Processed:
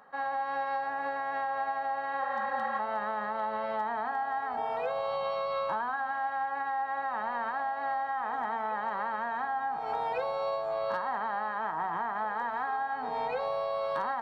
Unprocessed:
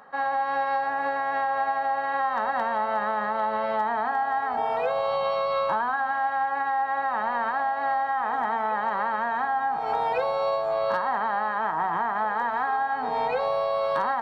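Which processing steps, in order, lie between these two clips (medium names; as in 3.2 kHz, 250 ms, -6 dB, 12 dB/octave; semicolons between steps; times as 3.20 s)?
spectral replace 2.25–2.77 s, 380–2900 Hz before; trim -6.5 dB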